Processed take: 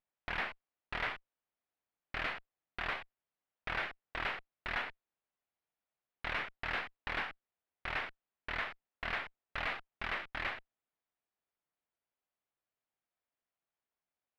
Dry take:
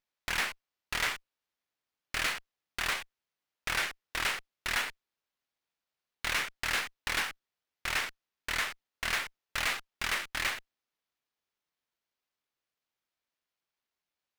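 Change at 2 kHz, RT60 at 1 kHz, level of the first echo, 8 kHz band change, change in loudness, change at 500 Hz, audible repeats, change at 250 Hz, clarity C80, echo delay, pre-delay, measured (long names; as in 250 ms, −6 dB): −5.5 dB, no reverb audible, no echo audible, below −25 dB, −6.5 dB, −1.0 dB, no echo audible, −2.5 dB, no reverb audible, no echo audible, no reverb audible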